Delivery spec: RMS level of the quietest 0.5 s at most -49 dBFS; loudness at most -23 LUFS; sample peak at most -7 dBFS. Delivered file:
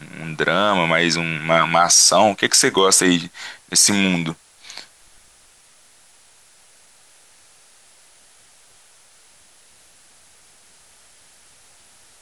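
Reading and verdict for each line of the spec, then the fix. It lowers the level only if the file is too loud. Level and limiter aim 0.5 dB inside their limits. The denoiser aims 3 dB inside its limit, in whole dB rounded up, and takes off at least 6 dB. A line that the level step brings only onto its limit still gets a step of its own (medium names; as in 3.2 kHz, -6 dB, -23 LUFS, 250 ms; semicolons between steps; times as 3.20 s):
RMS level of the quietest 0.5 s -52 dBFS: pass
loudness -15.5 LUFS: fail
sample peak -3.5 dBFS: fail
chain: trim -8 dB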